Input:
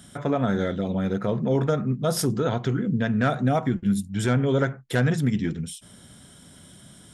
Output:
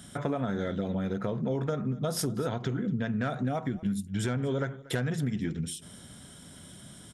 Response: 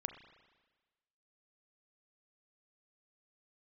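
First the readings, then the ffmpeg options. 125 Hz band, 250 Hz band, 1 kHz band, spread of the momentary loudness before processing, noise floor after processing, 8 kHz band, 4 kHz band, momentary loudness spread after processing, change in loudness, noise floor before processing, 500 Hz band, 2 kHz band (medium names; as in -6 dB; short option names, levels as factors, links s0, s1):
-7.0 dB, -6.5 dB, -8.0 dB, 5 LU, -50 dBFS, -4.0 dB, -5.0 dB, 17 LU, -7.0 dB, -50 dBFS, -7.5 dB, -7.5 dB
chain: -af "acompressor=threshold=0.0447:ratio=6,aecho=1:1:236:0.0944"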